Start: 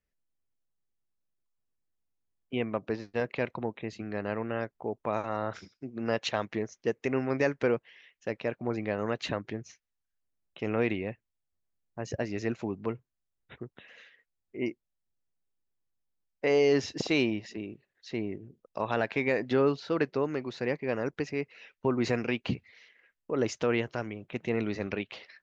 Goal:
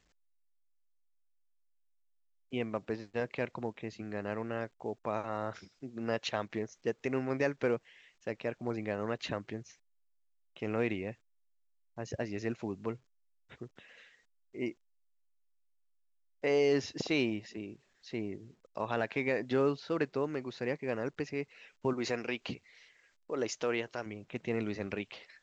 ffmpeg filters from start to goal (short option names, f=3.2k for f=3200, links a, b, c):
-filter_complex "[0:a]asettb=1/sr,asplit=3[a][b][c];[a]atrim=end=21.934[d];[b]atrim=start=21.93:end=24.06,asetpts=PTS-STARTPTS,afade=t=in:d=0.004:c=qsin,afade=t=out:st=2.126:d=0.004:c=qsin,bass=f=250:g=-9,treble=f=4k:g=5[e];[c]atrim=start=24.056[f];[d][e]acrossfade=d=0.004:c1=hsin:c2=qsin[g];[g][f]acrossfade=d=0.004:c1=qsin:c2=hsin,volume=-4dB" -ar 16000 -c:a pcm_alaw